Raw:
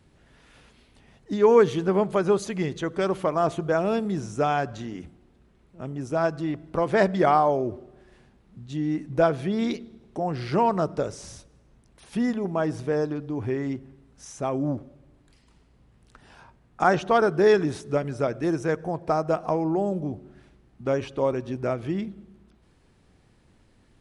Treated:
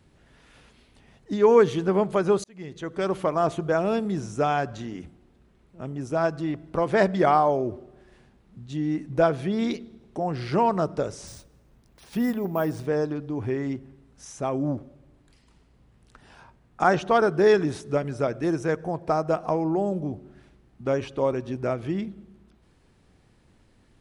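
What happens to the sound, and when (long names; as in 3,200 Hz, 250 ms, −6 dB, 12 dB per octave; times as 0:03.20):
0:02.44–0:03.15: fade in
0:11.27–0:12.86: bad sample-rate conversion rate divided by 3×, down none, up hold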